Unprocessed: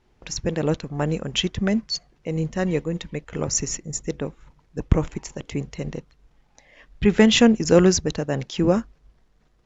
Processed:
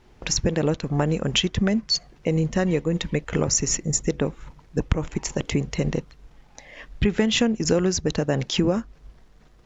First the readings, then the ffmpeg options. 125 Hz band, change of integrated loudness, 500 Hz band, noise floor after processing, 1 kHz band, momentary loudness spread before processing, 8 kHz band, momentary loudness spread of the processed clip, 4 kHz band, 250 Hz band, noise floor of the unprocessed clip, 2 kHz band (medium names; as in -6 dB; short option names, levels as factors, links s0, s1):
+1.0 dB, -1.5 dB, -2.0 dB, -53 dBFS, -2.0 dB, 16 LU, no reading, 7 LU, +1.0 dB, -2.0 dB, -62 dBFS, -1.0 dB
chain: -af "acompressor=threshold=0.0447:ratio=6,volume=2.66"